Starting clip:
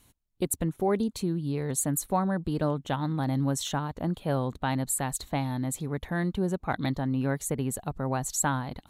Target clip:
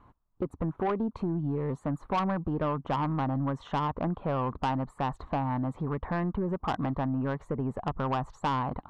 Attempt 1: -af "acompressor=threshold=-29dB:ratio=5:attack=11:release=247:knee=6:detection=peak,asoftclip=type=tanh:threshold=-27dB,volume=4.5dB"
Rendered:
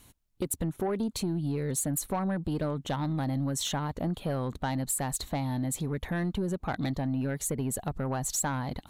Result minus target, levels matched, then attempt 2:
1000 Hz band -6.0 dB
-af "acompressor=threshold=-29dB:ratio=5:attack=11:release=247:knee=6:detection=peak,lowpass=f=1.1k:t=q:w=3.5,asoftclip=type=tanh:threshold=-27dB,volume=4.5dB"

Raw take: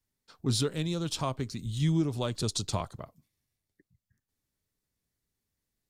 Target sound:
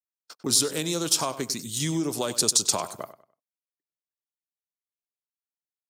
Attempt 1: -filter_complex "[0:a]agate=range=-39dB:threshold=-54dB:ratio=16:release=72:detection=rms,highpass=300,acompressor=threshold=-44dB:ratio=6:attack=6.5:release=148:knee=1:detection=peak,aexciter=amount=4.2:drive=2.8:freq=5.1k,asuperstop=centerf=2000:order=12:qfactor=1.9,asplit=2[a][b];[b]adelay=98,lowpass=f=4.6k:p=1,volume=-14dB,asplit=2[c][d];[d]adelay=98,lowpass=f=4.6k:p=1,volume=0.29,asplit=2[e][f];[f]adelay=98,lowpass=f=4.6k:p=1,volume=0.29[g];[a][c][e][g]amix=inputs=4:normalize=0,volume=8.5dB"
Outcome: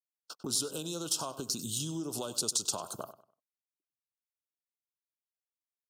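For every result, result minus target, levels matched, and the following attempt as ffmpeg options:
compressor: peak gain reduction +10 dB; 2000 Hz band -5.0 dB
-filter_complex "[0:a]agate=range=-39dB:threshold=-54dB:ratio=16:release=72:detection=rms,highpass=300,acompressor=threshold=-32dB:ratio=6:attack=6.5:release=148:knee=1:detection=peak,aexciter=amount=4.2:drive=2.8:freq=5.1k,asuperstop=centerf=2000:order=12:qfactor=1.9,asplit=2[a][b];[b]adelay=98,lowpass=f=4.6k:p=1,volume=-14dB,asplit=2[c][d];[d]adelay=98,lowpass=f=4.6k:p=1,volume=0.29,asplit=2[e][f];[f]adelay=98,lowpass=f=4.6k:p=1,volume=0.29[g];[a][c][e][g]amix=inputs=4:normalize=0,volume=8.5dB"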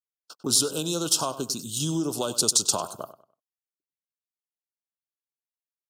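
2000 Hz band -6.0 dB
-filter_complex "[0:a]agate=range=-39dB:threshold=-54dB:ratio=16:release=72:detection=rms,highpass=300,acompressor=threshold=-32dB:ratio=6:attack=6.5:release=148:knee=1:detection=peak,aexciter=amount=4.2:drive=2.8:freq=5.1k,asplit=2[a][b];[b]adelay=98,lowpass=f=4.6k:p=1,volume=-14dB,asplit=2[c][d];[d]adelay=98,lowpass=f=4.6k:p=1,volume=0.29,asplit=2[e][f];[f]adelay=98,lowpass=f=4.6k:p=1,volume=0.29[g];[a][c][e][g]amix=inputs=4:normalize=0,volume=8.5dB"

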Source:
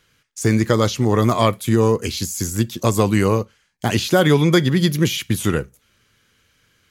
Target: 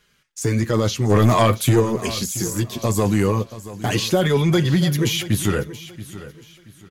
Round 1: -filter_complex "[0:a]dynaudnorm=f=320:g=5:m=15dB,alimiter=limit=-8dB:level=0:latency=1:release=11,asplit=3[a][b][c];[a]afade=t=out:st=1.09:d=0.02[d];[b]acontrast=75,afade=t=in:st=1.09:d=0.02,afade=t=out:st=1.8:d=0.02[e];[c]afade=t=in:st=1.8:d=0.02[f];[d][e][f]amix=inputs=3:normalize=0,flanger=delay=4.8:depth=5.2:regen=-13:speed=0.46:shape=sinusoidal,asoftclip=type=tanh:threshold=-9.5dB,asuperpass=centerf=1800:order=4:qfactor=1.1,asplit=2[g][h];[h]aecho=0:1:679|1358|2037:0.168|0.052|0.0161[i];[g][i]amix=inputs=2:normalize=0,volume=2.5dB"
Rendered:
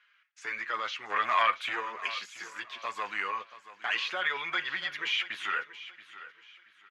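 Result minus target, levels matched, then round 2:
2000 Hz band +11.5 dB
-filter_complex "[0:a]dynaudnorm=f=320:g=5:m=15dB,alimiter=limit=-8dB:level=0:latency=1:release=11,asplit=3[a][b][c];[a]afade=t=out:st=1.09:d=0.02[d];[b]acontrast=75,afade=t=in:st=1.09:d=0.02,afade=t=out:st=1.8:d=0.02[e];[c]afade=t=in:st=1.8:d=0.02[f];[d][e][f]amix=inputs=3:normalize=0,flanger=delay=4.8:depth=5.2:regen=-13:speed=0.46:shape=sinusoidal,asoftclip=type=tanh:threshold=-9.5dB,asplit=2[g][h];[h]aecho=0:1:679|1358|2037:0.168|0.052|0.0161[i];[g][i]amix=inputs=2:normalize=0,volume=2.5dB"

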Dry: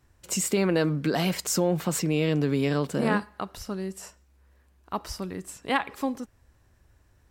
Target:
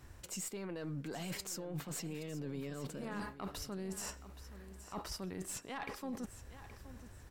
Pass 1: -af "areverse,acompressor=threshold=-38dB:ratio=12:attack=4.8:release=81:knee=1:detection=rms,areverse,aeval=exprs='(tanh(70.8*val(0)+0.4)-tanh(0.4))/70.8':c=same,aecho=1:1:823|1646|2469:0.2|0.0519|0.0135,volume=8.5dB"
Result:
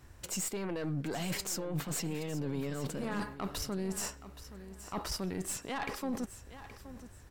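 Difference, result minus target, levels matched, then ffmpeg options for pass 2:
compressor: peak gain reduction -7.5 dB
-af "areverse,acompressor=threshold=-46dB:ratio=12:attack=4.8:release=81:knee=1:detection=rms,areverse,aeval=exprs='(tanh(70.8*val(0)+0.4)-tanh(0.4))/70.8':c=same,aecho=1:1:823|1646|2469:0.2|0.0519|0.0135,volume=8.5dB"

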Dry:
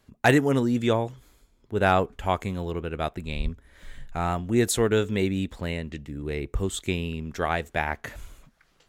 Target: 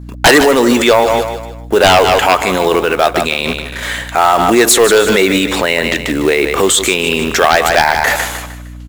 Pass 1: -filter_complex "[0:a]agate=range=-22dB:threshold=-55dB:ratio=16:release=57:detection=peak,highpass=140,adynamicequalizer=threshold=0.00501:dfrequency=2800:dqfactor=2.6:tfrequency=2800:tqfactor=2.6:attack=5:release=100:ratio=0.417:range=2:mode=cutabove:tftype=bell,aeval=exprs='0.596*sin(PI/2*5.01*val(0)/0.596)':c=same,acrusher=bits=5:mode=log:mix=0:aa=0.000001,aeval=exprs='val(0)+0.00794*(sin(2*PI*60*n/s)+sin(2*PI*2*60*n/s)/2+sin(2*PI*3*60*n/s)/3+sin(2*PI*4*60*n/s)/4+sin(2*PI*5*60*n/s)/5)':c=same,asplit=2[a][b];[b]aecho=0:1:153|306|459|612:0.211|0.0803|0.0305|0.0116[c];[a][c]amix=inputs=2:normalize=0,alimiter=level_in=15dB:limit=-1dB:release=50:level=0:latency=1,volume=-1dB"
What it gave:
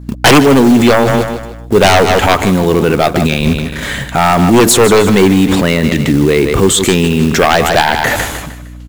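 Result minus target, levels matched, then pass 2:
125 Hz band +10.5 dB
-filter_complex "[0:a]agate=range=-22dB:threshold=-55dB:ratio=16:release=57:detection=peak,highpass=530,adynamicequalizer=threshold=0.00501:dfrequency=2800:dqfactor=2.6:tfrequency=2800:tqfactor=2.6:attack=5:release=100:ratio=0.417:range=2:mode=cutabove:tftype=bell,aeval=exprs='0.596*sin(PI/2*5.01*val(0)/0.596)':c=same,acrusher=bits=5:mode=log:mix=0:aa=0.000001,aeval=exprs='val(0)+0.00794*(sin(2*PI*60*n/s)+sin(2*PI*2*60*n/s)/2+sin(2*PI*3*60*n/s)/3+sin(2*PI*4*60*n/s)/4+sin(2*PI*5*60*n/s)/5)':c=same,asplit=2[a][b];[b]aecho=0:1:153|306|459|612:0.211|0.0803|0.0305|0.0116[c];[a][c]amix=inputs=2:normalize=0,alimiter=level_in=15dB:limit=-1dB:release=50:level=0:latency=1,volume=-1dB"

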